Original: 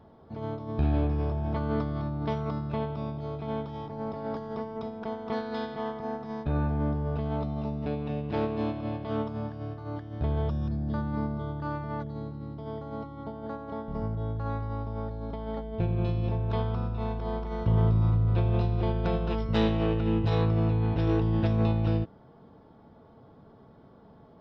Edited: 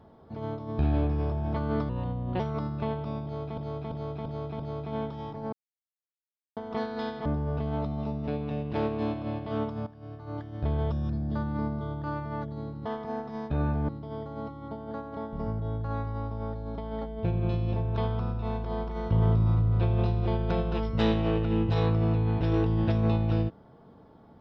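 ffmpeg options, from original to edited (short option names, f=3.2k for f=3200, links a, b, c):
-filter_complex "[0:a]asplit=13[a][b][c][d][e][f][g][h][i][j][k][l][m];[a]atrim=end=1.894[n];[b]atrim=start=1.89:end=2.31,asetpts=PTS-STARTPTS,asetrate=36603,aresample=44100[o];[c]atrim=start=2.306:end=3.492[p];[d]atrim=start=3.148:end=3.492[q];[e]atrim=start=3.148:end=3.492[r];[f]atrim=start=3.148:end=3.492[s];[g]atrim=start=3.148:end=4.08,asetpts=PTS-STARTPTS,afade=t=out:st=0.928:d=0.004:c=hsin[t];[h]atrim=start=4.08:end=5.12,asetpts=PTS-STARTPTS,volume=0[u];[i]atrim=start=5.12:end=5.812,asetpts=PTS-STARTPTS,afade=t=in:d=0.004:c=hsin[v];[j]atrim=start=6.838:end=9.45,asetpts=PTS-STARTPTS,afade=t=out:st=2.608:d=0.004:c=hsin:silence=0.149624[w];[k]atrim=start=9.45:end=12.442,asetpts=PTS-STARTPTS,afade=t=in:d=0.52:silence=0.149624[x];[l]atrim=start=5.808:end=6.842[y];[m]atrim=start=12.438[z];[n][o]acrossfade=d=0.004:c1=hsin:c2=hsin[aa];[aa][p]acrossfade=d=0.004:c1=hsin:c2=hsin[ab];[ab][q]acrossfade=d=0.004:c1=hsin:c2=hsin[ac];[ac][r]acrossfade=d=0.004:c1=hsin:c2=hsin[ad];[ad][s]acrossfade=d=0.004:c1=hsin:c2=hsin[ae];[t][u][v]concat=n=3:v=0:a=1[af];[ae][af]acrossfade=d=0.004:c1=hsin:c2=hsin[ag];[w][x]concat=n=2:v=0:a=1[ah];[ag][ah]acrossfade=d=0.004:c1=hsin:c2=hsin[ai];[ai][y]acrossfade=d=0.004:c1=hsin:c2=hsin[aj];[aj][z]acrossfade=d=0.004:c1=hsin:c2=hsin"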